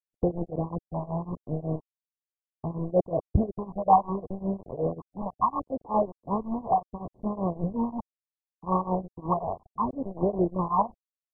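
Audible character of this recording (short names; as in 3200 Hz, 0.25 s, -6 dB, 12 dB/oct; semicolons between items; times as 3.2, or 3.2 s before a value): a quantiser's noise floor 6-bit, dither none; phasing stages 12, 0.71 Hz, lowest notch 410–1400 Hz; tremolo triangle 5.4 Hz, depth 95%; MP2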